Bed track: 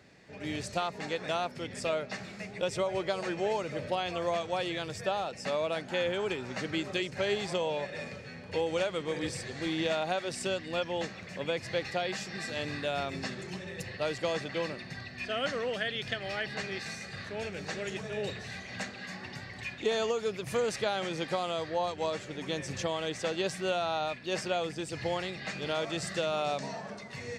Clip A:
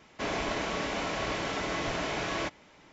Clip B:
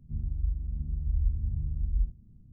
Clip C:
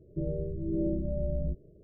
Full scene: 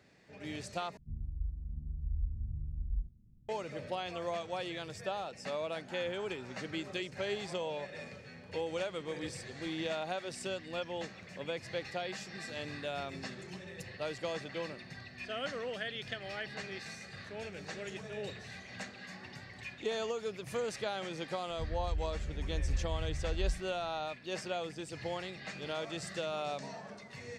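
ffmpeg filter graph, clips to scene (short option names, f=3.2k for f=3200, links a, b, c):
-filter_complex "[2:a]asplit=2[a][b];[0:a]volume=-6dB,asplit=2[c][d];[c]atrim=end=0.974[e];[a]atrim=end=2.52,asetpts=PTS-STARTPTS,volume=-8dB[f];[d]atrim=start=3.486[g];[b]atrim=end=2.52,asetpts=PTS-STARTPTS,volume=-6dB,afade=t=in:d=0.004:c=hsin,afade=t=out:st=2.516:d=0.004:c=hsin,adelay=947268S[h];[e][f]acrossfade=d=0.004:c1=hsin:c2=hsin[i];[i][g]acrossfade=d=0.004:c1=hsin:c2=hsin[j];[j][h]amix=inputs=2:normalize=0"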